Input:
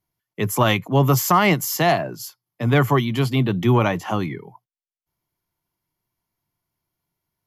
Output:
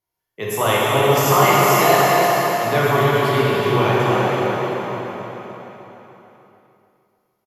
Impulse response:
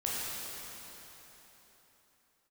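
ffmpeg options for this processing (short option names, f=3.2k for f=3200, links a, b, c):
-filter_complex "[0:a]lowshelf=f=330:t=q:w=1.5:g=-7,asplit=2[a][b];[b]adelay=301,lowpass=f=4.8k:p=1,volume=-5dB,asplit=2[c][d];[d]adelay=301,lowpass=f=4.8k:p=1,volume=0.42,asplit=2[e][f];[f]adelay=301,lowpass=f=4.8k:p=1,volume=0.42,asplit=2[g][h];[h]adelay=301,lowpass=f=4.8k:p=1,volume=0.42,asplit=2[i][j];[j]adelay=301,lowpass=f=4.8k:p=1,volume=0.42[k];[a][c][e][g][i][k]amix=inputs=6:normalize=0[l];[1:a]atrim=start_sample=2205,asetrate=42777,aresample=44100[m];[l][m]afir=irnorm=-1:irlink=0,volume=-3dB"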